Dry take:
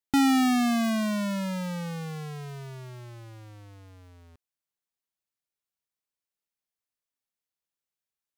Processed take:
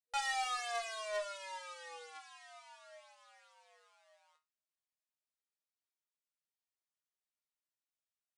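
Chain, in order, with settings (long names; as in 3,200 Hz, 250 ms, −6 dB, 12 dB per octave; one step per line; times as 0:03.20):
resonators tuned to a chord D#3 sus4, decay 0.24 s
brick-wall band-pass 480–10,000 Hz
harmonic generator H 2 −20 dB, 6 −34 dB, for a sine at −31.5 dBFS
level +6.5 dB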